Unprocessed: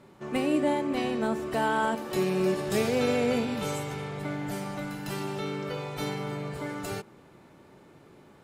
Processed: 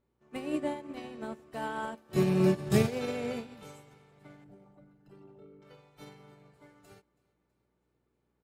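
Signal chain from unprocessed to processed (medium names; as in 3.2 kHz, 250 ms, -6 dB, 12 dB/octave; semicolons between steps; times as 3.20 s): 4.44–5.62 s: resonances exaggerated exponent 2; feedback delay 326 ms, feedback 58%, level -19.5 dB; mains buzz 60 Hz, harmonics 8, -54 dBFS -3 dB/octave; 2.09–2.88 s: peaking EQ 120 Hz +14.5 dB 1.3 oct; upward expansion 2.5:1, over -37 dBFS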